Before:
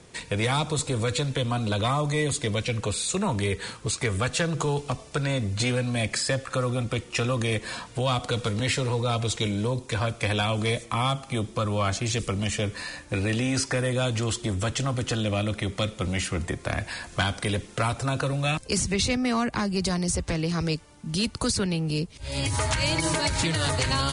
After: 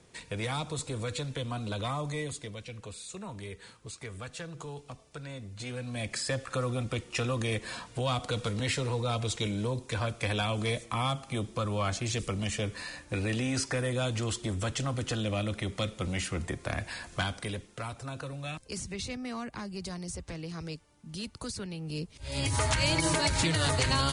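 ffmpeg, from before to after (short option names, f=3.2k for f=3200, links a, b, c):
-af "volume=12.5dB,afade=t=out:st=2.1:d=0.44:silence=0.446684,afade=t=in:st=5.59:d=0.84:silence=0.298538,afade=t=out:st=17.08:d=0.65:silence=0.421697,afade=t=in:st=21.76:d=0.84:silence=0.298538"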